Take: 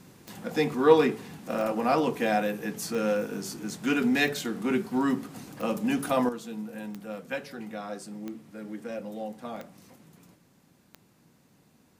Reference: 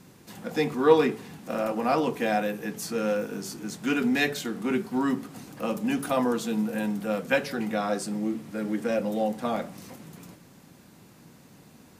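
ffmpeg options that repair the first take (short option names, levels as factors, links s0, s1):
-af "adeclick=t=4,asetnsamples=n=441:p=0,asendcmd='6.29 volume volume 9.5dB',volume=1"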